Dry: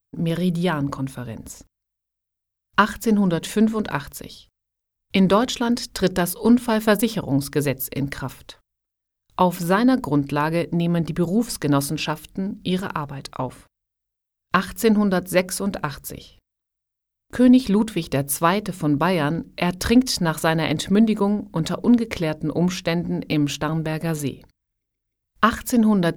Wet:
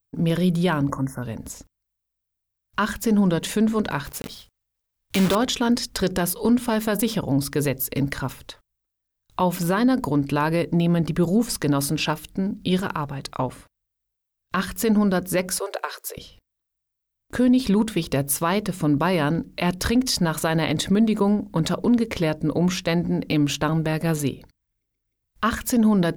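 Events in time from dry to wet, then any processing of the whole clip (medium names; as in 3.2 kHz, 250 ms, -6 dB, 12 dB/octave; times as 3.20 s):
0.90–1.22 s: spectral selection erased 2.1–5.2 kHz
4.05–5.36 s: block-companded coder 3-bit
15.59–16.17 s: steep high-pass 370 Hz 72 dB/octave
whole clip: peak limiter -13 dBFS; trim +1.5 dB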